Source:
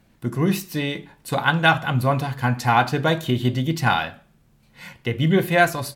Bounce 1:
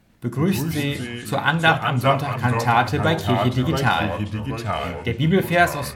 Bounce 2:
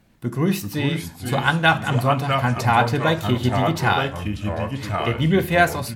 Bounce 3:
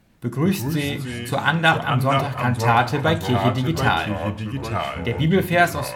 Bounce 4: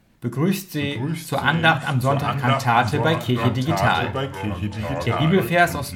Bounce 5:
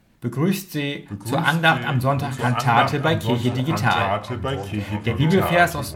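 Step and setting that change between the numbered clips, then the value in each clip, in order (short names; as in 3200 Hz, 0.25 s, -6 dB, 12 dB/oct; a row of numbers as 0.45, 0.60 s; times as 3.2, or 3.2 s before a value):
echoes that change speed, time: 95, 343, 156, 525, 819 ms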